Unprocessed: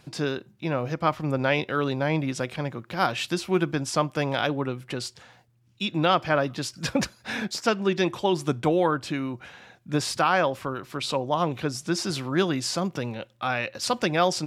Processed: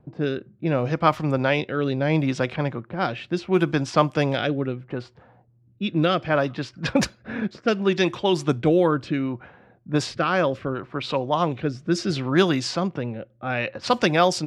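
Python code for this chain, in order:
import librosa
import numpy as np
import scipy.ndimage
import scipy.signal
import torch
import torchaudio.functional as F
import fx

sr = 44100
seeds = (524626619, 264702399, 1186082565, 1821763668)

y = fx.rotary(x, sr, hz=0.7)
y = fx.env_lowpass(y, sr, base_hz=590.0, full_db=-21.0)
y = y * 10.0 ** (5.5 / 20.0)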